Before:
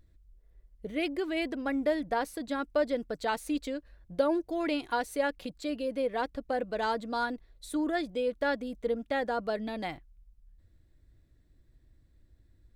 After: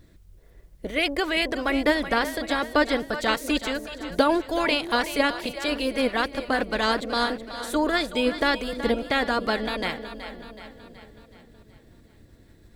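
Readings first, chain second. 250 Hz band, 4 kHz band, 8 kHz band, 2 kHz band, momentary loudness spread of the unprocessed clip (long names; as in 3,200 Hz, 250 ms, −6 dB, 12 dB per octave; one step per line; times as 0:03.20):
+6.0 dB, +14.5 dB, +9.5 dB, +11.5 dB, 8 LU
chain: ceiling on every frequency bin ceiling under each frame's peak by 15 dB
on a send: echo with a time of its own for lows and highs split 490 Hz, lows 515 ms, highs 374 ms, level −11.5 dB
on the sum: level +7 dB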